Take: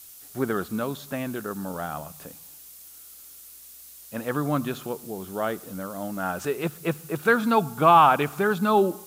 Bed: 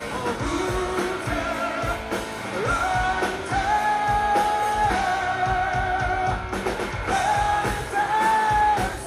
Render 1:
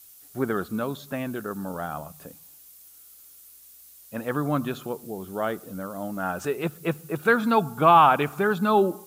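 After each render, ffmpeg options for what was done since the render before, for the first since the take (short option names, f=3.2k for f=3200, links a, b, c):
-af "afftdn=nr=6:nf=-47"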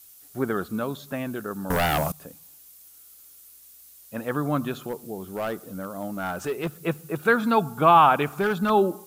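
-filter_complex "[0:a]asettb=1/sr,asplit=3[a][b][c];[a]atrim=end=1.704[d];[b]atrim=start=1.7:end=2.12,asetpts=PTS-STARTPTS,afade=t=in:d=0.004:c=qsin,afade=t=out:st=0.416:d=0.004:c=qsin,aeval=exprs='0.126*sin(PI/2*3.55*val(0)/0.126)':c=same[e];[c]atrim=start=2.116[f];[d][e]acrossfade=d=0.004:c1=hsin:c2=qsin[g];[g][f]acrossfade=d=0.004:c1=qsin:c2=hsin,asettb=1/sr,asplit=3[h][i][j];[h]atrim=end=4.874[k];[i]atrim=start=4.87:end=6.79,asetpts=PTS-STARTPTS,afade=t=in:d=0.004:c=qsin,afade=t=out:st=1.916:d=0.004:c=qsin,volume=22.5dB,asoftclip=hard,volume=-22.5dB[l];[j]atrim=start=6.786[m];[k][l]acrossfade=d=0.004:c1=hsin:c2=qsin[n];[n][m]acrossfade=d=0.004:c1=qsin:c2=hsin,asettb=1/sr,asplit=3[o][p][q];[o]atrim=end=8.264[r];[p]atrim=start=8.26:end=8.7,asetpts=PTS-STARTPTS,afade=t=in:d=0.004:c=qsin,afade=t=out:st=0.436:d=0.004:c=qsin,asoftclip=type=hard:threshold=-18.5dB[s];[q]atrim=start=8.696[t];[r][s]acrossfade=d=0.004:c1=hsin:c2=qsin[u];[u][t]acrossfade=d=0.004:c1=qsin:c2=hsin"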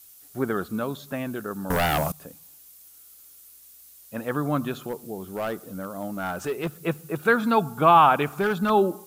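-af anull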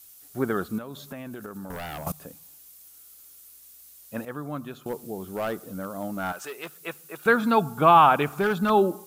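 -filter_complex "[0:a]asettb=1/sr,asplit=3[a][b][c];[a]atrim=end=0.784[d];[b]atrim=start=0.78:end=2.07,asetpts=PTS-STARTPTS,afade=t=in:d=0.004:c=qsin,afade=t=out:st=1.286:d=0.004:c=qsin,acompressor=threshold=-33dB:ratio=12:attack=3.2:release=140:knee=1:detection=peak[e];[c]atrim=start=2.066[f];[d][e]acrossfade=d=0.004:c1=hsin:c2=qsin[g];[g][f]acrossfade=d=0.004:c1=qsin:c2=hsin,asettb=1/sr,asplit=3[h][i][j];[h]atrim=end=6.324[k];[i]atrim=start=6.32:end=7.26,asetpts=PTS-STARTPTS,afade=t=in:d=0.004:c=qsin,afade=t=out:st=0.936:d=0.004:c=qsin,highpass=f=1.3k:p=1[l];[j]atrim=start=7.256[m];[k][l]acrossfade=d=0.004:c1=hsin:c2=qsin[n];[n][m]acrossfade=d=0.004:c1=qsin:c2=hsin,asplit=3[o][p][q];[o]atrim=end=4.252[r];[p]atrim=start=4.248:end=4.862,asetpts=PTS-STARTPTS,volume=-8.5dB[s];[q]atrim=start=4.858[t];[r][s]acrossfade=d=0.004:c1=hsin:c2=hsin[u];[u][t]acrossfade=d=0.004:c1=hsin:c2=hsin"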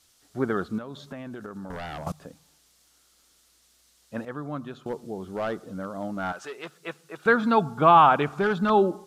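-af "lowpass=5.4k,equalizer=f=2.5k:w=5.1:g=-4"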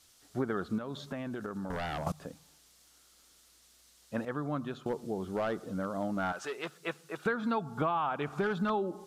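-af "acompressor=threshold=-28dB:ratio=10"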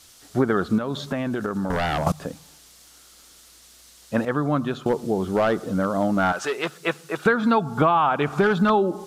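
-af "volume=12dB"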